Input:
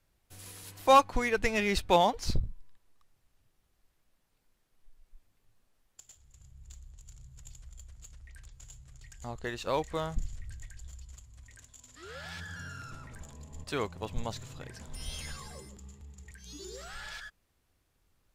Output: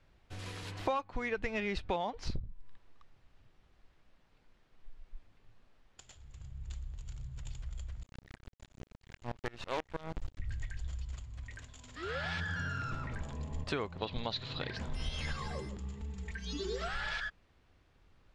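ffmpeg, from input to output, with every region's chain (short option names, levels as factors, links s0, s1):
-filter_complex "[0:a]asettb=1/sr,asplit=3[s0][s1][s2];[s0]atrim=end=8.034[s3];[s1]atrim=start=8.03:end=10.4,asetpts=PTS-STARTPTS,afade=t=in:d=0.004:c=qsin,afade=t=out:st=2.366:d=0.004:c=qsin,acrusher=bits=5:dc=4:mix=0:aa=0.000001,aeval=exprs='val(0)*pow(10,-25*if(lt(mod(-6.2*n/s,1),2*abs(-6.2)/1000),1-mod(-6.2*n/s,1)/(2*abs(-6.2)/1000),(mod(-6.2*n/s,1)-2*abs(-6.2)/1000)/(1-2*abs(-6.2)/1000))/20)':c=same[s4];[s2]atrim=start=10.396[s5];[s3][s4]acrossfade=d=0.004:c1=hsin:c2=qsin[s6];[s6][s5]acrossfade=d=0.004:c1=qsin:c2=hsin,asettb=1/sr,asplit=3[s7][s8][s9];[s7]atrim=end=13.984[s10];[s8]atrim=start=13.98:end=14.77,asetpts=PTS-STARTPTS,afade=t=in:d=0.004:c=qsin,afade=t=out:st=0.786:d=0.004:c=qsin,lowpass=f=4100:t=q:w=5.3,lowshelf=f=120:g=-8[s11];[s9]atrim=start=14.766[s12];[s10][s11]acrossfade=d=0.004:c1=hsin:c2=qsin[s13];[s13][s12]acrossfade=d=0.004:c1=qsin:c2=hsin,asettb=1/sr,asplit=3[s14][s15][s16];[s14]atrim=end=15.974[s17];[s15]atrim=start=15.97:end=16.89,asetpts=PTS-STARTPTS,afade=t=in:d=0.004:c=qsin,afade=t=out:st=0.916:d=0.004:c=qsin,acrossover=split=5700[s18][s19];[s19]acompressor=threshold=0.00112:ratio=4:attack=1:release=60[s20];[s18][s20]amix=inputs=2:normalize=0,highshelf=f=5800:g=4,aecho=1:1:4.5:0.77,atrim=end_sample=40572[s21];[s16]atrim=start=16.886[s22];[s17][s21]acrossfade=d=0.004:c1=hsin:c2=qsin[s23];[s23][s22]acrossfade=d=0.004:c1=qsin:c2=hsin,lowpass=3600,acompressor=threshold=0.01:ratio=8,volume=2.51"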